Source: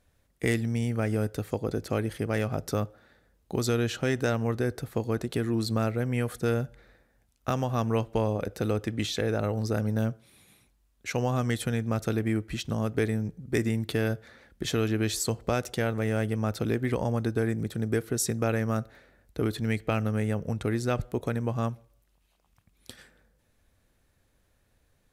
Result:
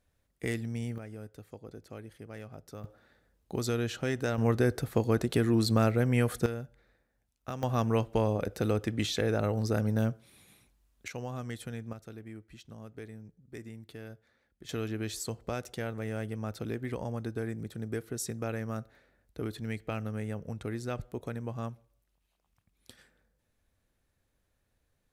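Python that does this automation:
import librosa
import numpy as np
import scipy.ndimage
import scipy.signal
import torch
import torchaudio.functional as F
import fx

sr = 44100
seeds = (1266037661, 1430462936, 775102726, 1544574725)

y = fx.gain(x, sr, db=fx.steps((0.0, -7.0), (0.98, -16.5), (2.84, -4.5), (4.38, 2.0), (6.46, -10.0), (7.63, -1.0), (11.08, -11.0), (11.93, -18.0), (14.69, -8.0)))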